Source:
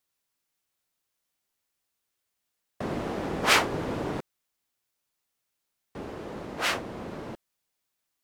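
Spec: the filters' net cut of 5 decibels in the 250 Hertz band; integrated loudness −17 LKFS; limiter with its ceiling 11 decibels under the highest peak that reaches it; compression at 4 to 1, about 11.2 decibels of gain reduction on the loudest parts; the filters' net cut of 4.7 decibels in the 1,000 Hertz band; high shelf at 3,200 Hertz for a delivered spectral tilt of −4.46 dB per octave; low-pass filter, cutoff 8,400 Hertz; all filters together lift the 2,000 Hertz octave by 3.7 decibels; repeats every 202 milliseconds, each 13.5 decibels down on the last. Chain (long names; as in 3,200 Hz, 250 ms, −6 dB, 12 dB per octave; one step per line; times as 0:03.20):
low-pass filter 8,400 Hz
parametric band 250 Hz −6.5 dB
parametric band 1,000 Hz −8.5 dB
parametric band 2,000 Hz +5.5 dB
high-shelf EQ 3,200 Hz +4 dB
downward compressor 4 to 1, threshold −27 dBFS
brickwall limiter −26 dBFS
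repeating echo 202 ms, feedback 21%, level −13.5 dB
level +21 dB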